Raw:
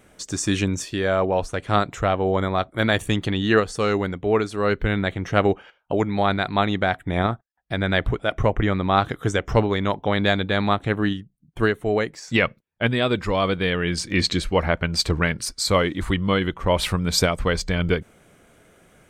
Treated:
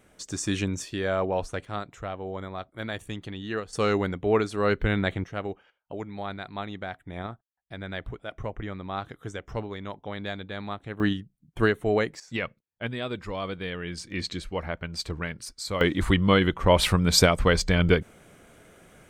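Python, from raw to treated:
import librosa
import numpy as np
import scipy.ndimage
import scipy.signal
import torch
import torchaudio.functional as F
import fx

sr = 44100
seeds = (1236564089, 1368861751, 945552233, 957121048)

y = fx.gain(x, sr, db=fx.steps((0.0, -5.5), (1.65, -13.5), (3.73, -2.5), (5.24, -14.0), (11.0, -2.0), (12.2, -11.0), (15.81, 1.0)))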